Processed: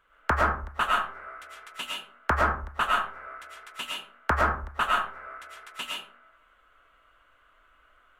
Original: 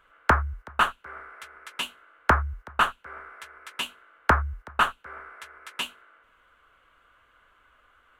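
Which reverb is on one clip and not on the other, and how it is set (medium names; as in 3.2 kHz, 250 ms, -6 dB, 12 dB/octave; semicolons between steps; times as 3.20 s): algorithmic reverb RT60 0.45 s, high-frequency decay 0.55×, pre-delay 70 ms, DRR -3 dB; trim -5.5 dB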